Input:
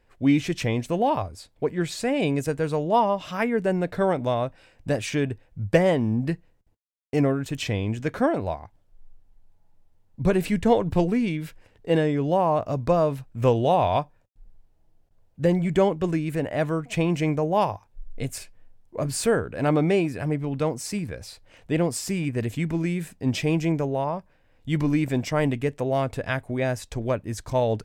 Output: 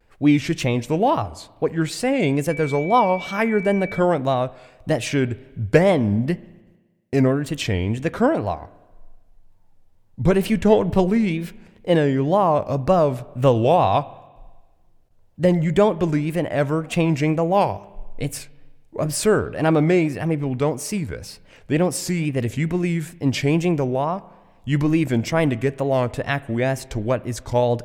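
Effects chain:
tape wow and flutter 140 cents
spring reverb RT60 1.3 s, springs 35/60 ms, chirp 60 ms, DRR 19.5 dB
0:02.49–0:03.98: steady tone 2,300 Hz −36 dBFS
level +4 dB

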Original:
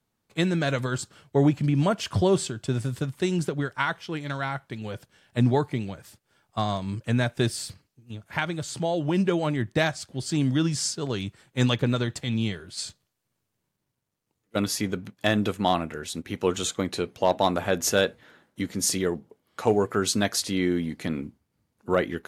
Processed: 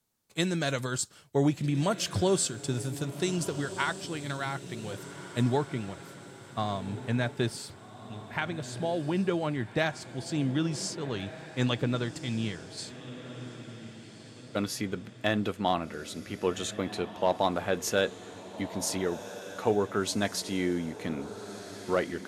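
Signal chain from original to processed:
bass and treble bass −2 dB, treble +9 dB, from 0:05.56 treble −4 dB
feedback delay with all-pass diffusion 1,534 ms, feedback 46%, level −13 dB
level −4 dB

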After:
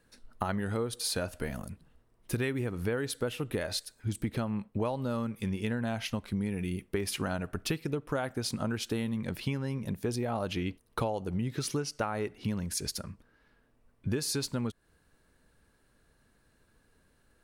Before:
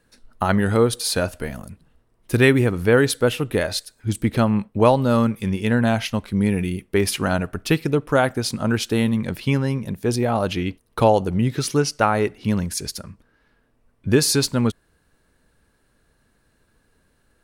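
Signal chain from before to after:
downward compressor 6 to 1, threshold −25 dBFS, peak gain reduction 14.5 dB
level −4 dB

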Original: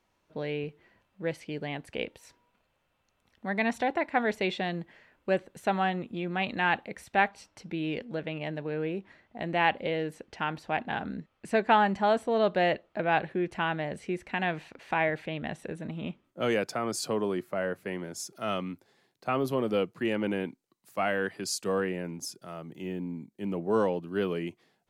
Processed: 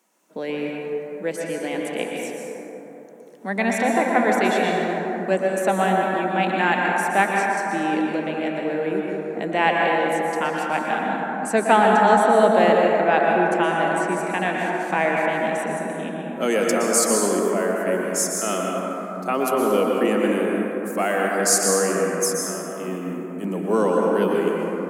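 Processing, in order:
Butterworth high-pass 180 Hz 48 dB per octave
high shelf with overshoot 5,600 Hz +10 dB, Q 1.5
dense smooth reverb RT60 3.7 s, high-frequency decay 0.3×, pre-delay 105 ms, DRR −2 dB
level +5.5 dB

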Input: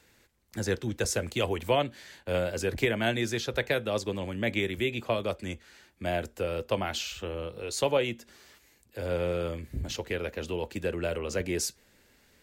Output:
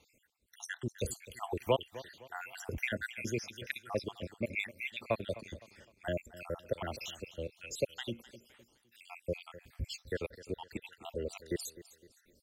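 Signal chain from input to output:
time-frequency cells dropped at random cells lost 72%
repeating echo 256 ms, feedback 37%, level −17 dB
level −2.5 dB

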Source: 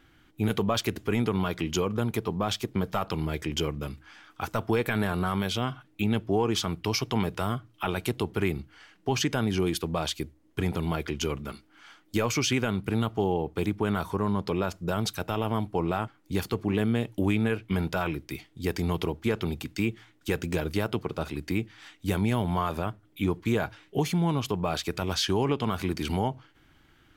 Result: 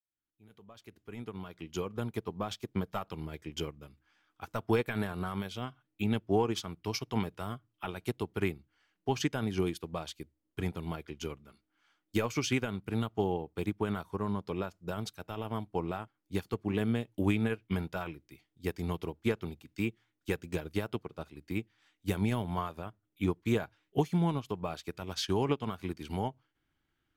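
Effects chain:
fade in at the beginning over 2.08 s
expander for the loud parts 2.5 to 1, over −35 dBFS

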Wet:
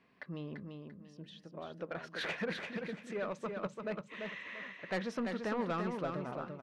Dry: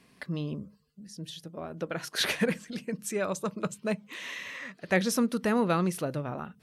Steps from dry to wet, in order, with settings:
low-pass filter 2,400 Hz 12 dB per octave
low-shelf EQ 260 Hz −9 dB
soft clipping −25.5 dBFS, distortion −13 dB
repeating echo 341 ms, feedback 28%, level −5 dB
level −4 dB

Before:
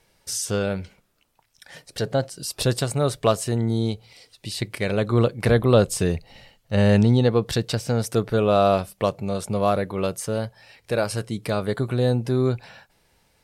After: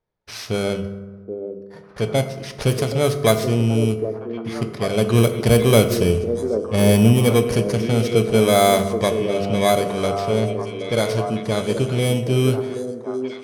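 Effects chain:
samples in bit-reversed order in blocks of 16 samples
low-pass that shuts in the quiet parts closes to 2,700 Hz, open at −14.5 dBFS
noise gate −51 dBFS, range −19 dB
echo through a band-pass that steps 776 ms, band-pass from 360 Hz, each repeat 1.4 octaves, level −4 dB
convolution reverb RT60 1.3 s, pre-delay 4 ms, DRR 7 dB
level +2.5 dB

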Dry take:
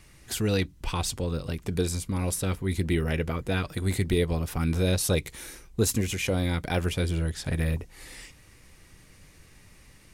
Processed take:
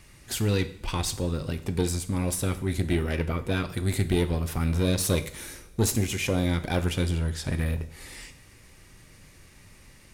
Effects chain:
one-sided soft clipper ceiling −23 dBFS
coupled-rooms reverb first 0.58 s, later 3.1 s, from −22 dB, DRR 9.5 dB
level +1.5 dB

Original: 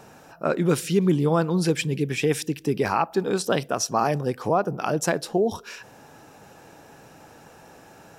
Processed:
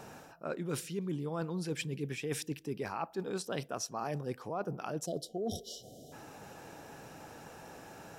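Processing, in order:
time-frequency box erased 0:05.06–0:06.12, 770–2,900 Hz
reversed playback
downward compressor 6 to 1, threshold −33 dBFS, peak gain reduction 16.5 dB
reversed playback
level −1.5 dB

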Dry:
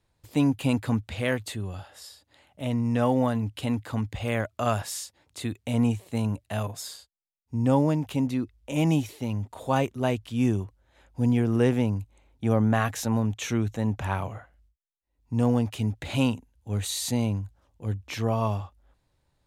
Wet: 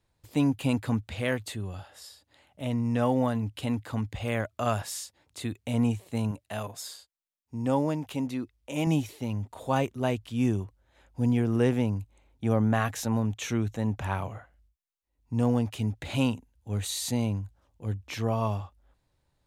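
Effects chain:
0:06.31–0:08.87: low-shelf EQ 170 Hz −9 dB
level −2 dB

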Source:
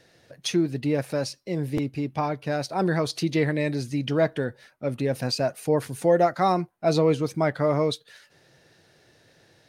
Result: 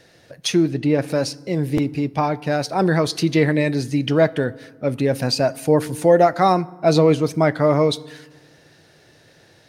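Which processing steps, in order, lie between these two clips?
0:00.68–0:01.08: high-shelf EQ 7,800 Hz −11 dB
feedback delay network reverb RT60 1.3 s, low-frequency decay 1.3×, high-frequency decay 0.55×, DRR 19 dB
level +6 dB

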